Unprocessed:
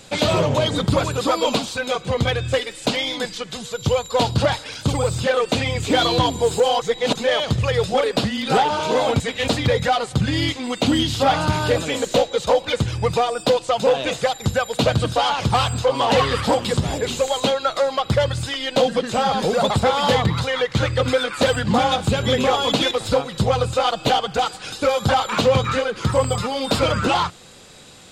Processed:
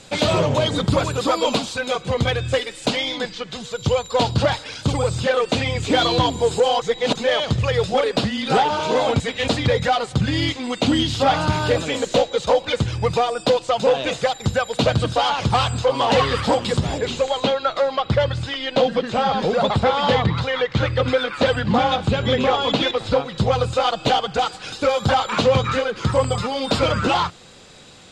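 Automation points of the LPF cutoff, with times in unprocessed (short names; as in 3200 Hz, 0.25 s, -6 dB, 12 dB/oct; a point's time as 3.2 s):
2.88 s 10000 Hz
3.34 s 4500 Hz
3.78 s 7800 Hz
16.79 s 7800 Hz
17.36 s 4300 Hz
23.14 s 4300 Hz
23.64 s 7200 Hz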